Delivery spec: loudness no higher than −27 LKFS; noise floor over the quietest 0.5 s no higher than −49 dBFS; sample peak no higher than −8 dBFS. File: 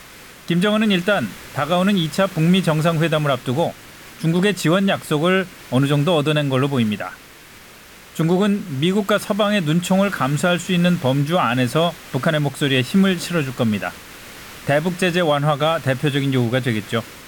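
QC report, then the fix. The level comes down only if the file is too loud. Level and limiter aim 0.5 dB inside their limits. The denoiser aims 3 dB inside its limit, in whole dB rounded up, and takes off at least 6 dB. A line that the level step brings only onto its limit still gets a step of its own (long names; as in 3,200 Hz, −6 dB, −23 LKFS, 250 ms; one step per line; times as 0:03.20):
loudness −19.0 LKFS: out of spec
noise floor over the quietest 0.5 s −43 dBFS: out of spec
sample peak −7.0 dBFS: out of spec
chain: level −8.5 dB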